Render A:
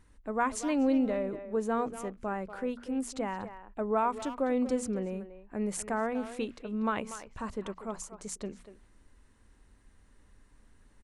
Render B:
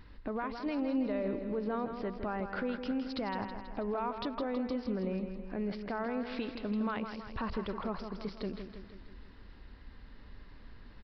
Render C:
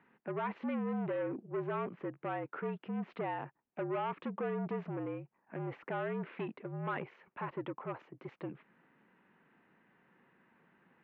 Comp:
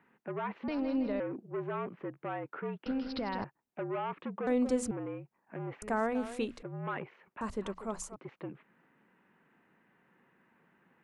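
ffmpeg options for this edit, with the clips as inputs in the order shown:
-filter_complex "[1:a]asplit=2[a][b];[0:a]asplit=3[c][d][e];[2:a]asplit=6[f][g][h][i][j][k];[f]atrim=end=0.682[l];[a]atrim=start=0.678:end=1.202[m];[g]atrim=start=1.198:end=2.862[n];[b]atrim=start=2.858:end=3.442[o];[h]atrim=start=3.438:end=4.472[p];[c]atrim=start=4.468:end=4.912[q];[i]atrim=start=4.908:end=5.822[r];[d]atrim=start=5.818:end=6.632[s];[j]atrim=start=6.628:end=7.412[t];[e]atrim=start=7.408:end=8.162[u];[k]atrim=start=8.158[v];[l][m]acrossfade=d=0.004:c1=hsin:c2=hsin[w];[w][n]acrossfade=d=0.004:c1=hsin:c2=hsin[x];[x][o]acrossfade=d=0.004:c1=hsin:c2=hsin[y];[y][p]acrossfade=d=0.004:c1=hsin:c2=hsin[z];[z][q]acrossfade=d=0.004:c1=hsin:c2=hsin[aa];[aa][r]acrossfade=d=0.004:c1=hsin:c2=hsin[ab];[ab][s]acrossfade=d=0.004:c1=hsin:c2=hsin[ac];[ac][t]acrossfade=d=0.004:c1=hsin:c2=hsin[ad];[ad][u]acrossfade=d=0.004:c1=hsin:c2=hsin[ae];[ae][v]acrossfade=d=0.004:c1=hsin:c2=hsin"

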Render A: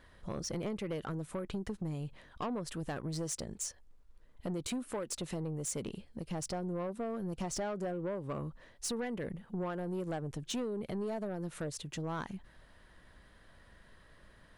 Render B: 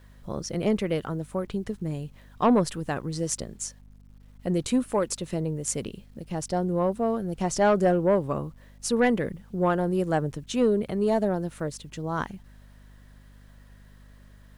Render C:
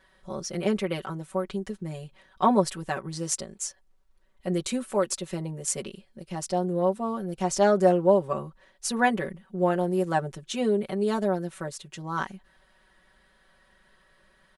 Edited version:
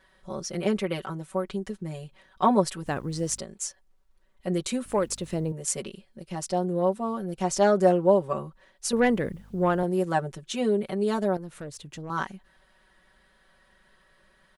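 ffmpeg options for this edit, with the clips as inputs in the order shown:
-filter_complex "[1:a]asplit=3[a][b][c];[2:a]asplit=5[d][e][f][g][h];[d]atrim=end=2.862[i];[a]atrim=start=2.858:end=3.392[j];[e]atrim=start=3.388:end=4.852[k];[b]atrim=start=4.848:end=5.522[l];[f]atrim=start=5.518:end=8.932[m];[c]atrim=start=8.928:end=9.832[n];[g]atrim=start=9.828:end=11.372[o];[0:a]atrim=start=11.368:end=12.102[p];[h]atrim=start=12.098[q];[i][j]acrossfade=d=0.004:c1=hsin:c2=hsin[r];[r][k]acrossfade=d=0.004:c1=hsin:c2=hsin[s];[s][l]acrossfade=d=0.004:c1=hsin:c2=hsin[t];[t][m]acrossfade=d=0.004:c1=hsin:c2=hsin[u];[u][n]acrossfade=d=0.004:c1=hsin:c2=hsin[v];[v][o]acrossfade=d=0.004:c1=hsin:c2=hsin[w];[w][p]acrossfade=d=0.004:c1=hsin:c2=hsin[x];[x][q]acrossfade=d=0.004:c1=hsin:c2=hsin"

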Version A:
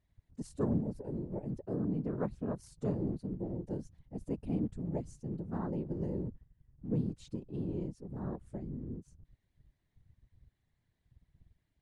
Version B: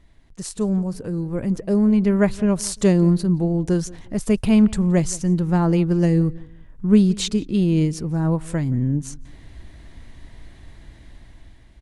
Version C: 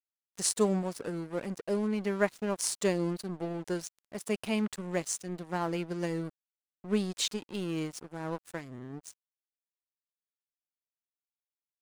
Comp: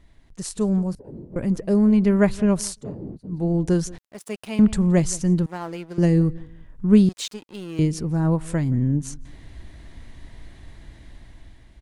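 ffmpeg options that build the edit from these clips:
-filter_complex "[0:a]asplit=2[a][b];[2:a]asplit=3[c][d][e];[1:a]asplit=6[f][g][h][i][j][k];[f]atrim=end=0.952[l];[a]atrim=start=0.948:end=1.362[m];[g]atrim=start=1.358:end=2.84[n];[b]atrim=start=2.6:end=3.5[o];[h]atrim=start=3.26:end=3.982[p];[c]atrim=start=3.978:end=4.592[q];[i]atrim=start=4.588:end=5.462[r];[d]atrim=start=5.458:end=5.982[s];[j]atrim=start=5.978:end=7.092[t];[e]atrim=start=7.088:end=7.792[u];[k]atrim=start=7.788[v];[l][m]acrossfade=d=0.004:c1=hsin:c2=hsin[w];[w][n]acrossfade=d=0.004:c1=hsin:c2=hsin[x];[x][o]acrossfade=d=0.24:c1=tri:c2=tri[y];[y][p]acrossfade=d=0.24:c1=tri:c2=tri[z];[z][q]acrossfade=d=0.004:c1=hsin:c2=hsin[aa];[aa][r]acrossfade=d=0.004:c1=hsin:c2=hsin[ab];[ab][s]acrossfade=d=0.004:c1=hsin:c2=hsin[ac];[ac][t]acrossfade=d=0.004:c1=hsin:c2=hsin[ad];[ad][u]acrossfade=d=0.004:c1=hsin:c2=hsin[ae];[ae][v]acrossfade=d=0.004:c1=hsin:c2=hsin"

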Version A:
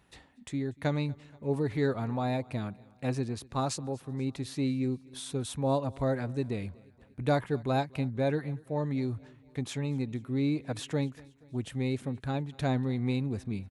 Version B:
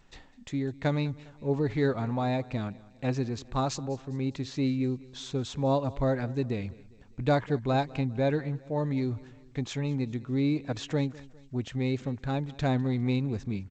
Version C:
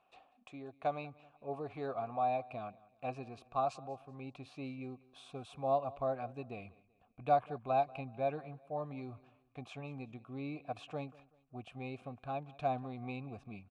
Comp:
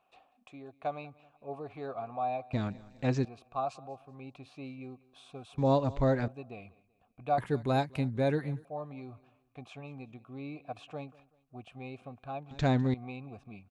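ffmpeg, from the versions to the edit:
-filter_complex "[1:a]asplit=3[a][b][c];[2:a]asplit=5[d][e][f][g][h];[d]atrim=end=2.532[i];[a]atrim=start=2.528:end=3.252[j];[e]atrim=start=3.248:end=5.582[k];[b]atrim=start=5.578:end=6.282[l];[f]atrim=start=6.278:end=7.382[m];[0:a]atrim=start=7.378:end=8.652[n];[g]atrim=start=8.648:end=12.512[o];[c]atrim=start=12.508:end=12.942[p];[h]atrim=start=12.938[q];[i][j]acrossfade=d=0.004:c1=hsin:c2=hsin[r];[r][k]acrossfade=d=0.004:c1=hsin:c2=hsin[s];[s][l]acrossfade=d=0.004:c1=hsin:c2=hsin[t];[t][m]acrossfade=d=0.004:c1=hsin:c2=hsin[u];[u][n]acrossfade=d=0.004:c1=hsin:c2=hsin[v];[v][o]acrossfade=d=0.004:c1=hsin:c2=hsin[w];[w][p]acrossfade=d=0.004:c1=hsin:c2=hsin[x];[x][q]acrossfade=d=0.004:c1=hsin:c2=hsin"

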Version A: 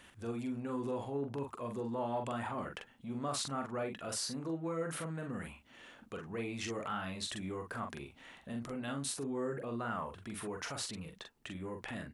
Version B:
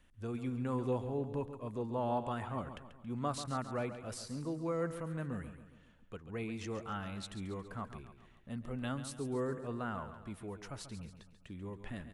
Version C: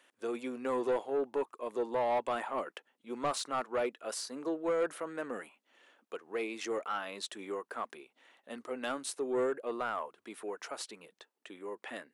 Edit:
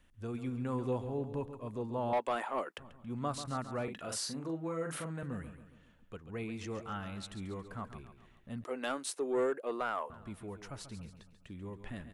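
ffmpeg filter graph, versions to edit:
-filter_complex "[2:a]asplit=2[a][b];[1:a]asplit=4[c][d][e][f];[c]atrim=end=2.132[g];[a]atrim=start=2.128:end=2.782[h];[d]atrim=start=2.778:end=3.882[i];[0:a]atrim=start=3.878:end=5.232[j];[e]atrim=start=5.228:end=8.642[k];[b]atrim=start=8.638:end=10.102[l];[f]atrim=start=10.098[m];[g][h]acrossfade=d=0.004:c1=hsin:c2=hsin[n];[n][i]acrossfade=d=0.004:c1=hsin:c2=hsin[o];[o][j]acrossfade=d=0.004:c1=hsin:c2=hsin[p];[p][k]acrossfade=d=0.004:c1=hsin:c2=hsin[q];[q][l]acrossfade=d=0.004:c1=hsin:c2=hsin[r];[r][m]acrossfade=d=0.004:c1=hsin:c2=hsin"

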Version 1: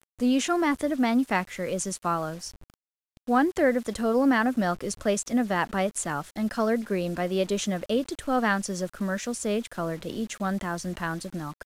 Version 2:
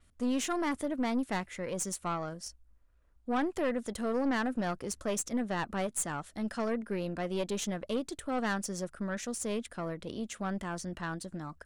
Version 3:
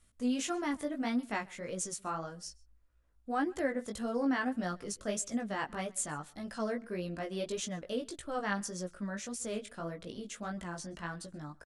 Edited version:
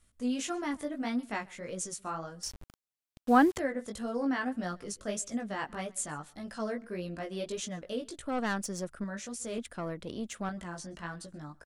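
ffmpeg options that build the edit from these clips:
-filter_complex "[1:a]asplit=2[a][b];[2:a]asplit=4[c][d][e][f];[c]atrim=end=2.432[g];[0:a]atrim=start=2.428:end=3.582[h];[d]atrim=start=3.578:end=8.222[i];[a]atrim=start=8.218:end=9.042[j];[e]atrim=start=9.038:end=9.582[k];[b]atrim=start=9.578:end=10.492[l];[f]atrim=start=10.488[m];[g][h]acrossfade=d=0.004:c1=hsin:c2=hsin[n];[n][i]acrossfade=d=0.004:c1=hsin:c2=hsin[o];[o][j]acrossfade=d=0.004:c1=hsin:c2=hsin[p];[p][k]acrossfade=d=0.004:c1=hsin:c2=hsin[q];[q][l]acrossfade=d=0.004:c1=hsin:c2=hsin[r];[r][m]acrossfade=d=0.004:c1=hsin:c2=hsin"

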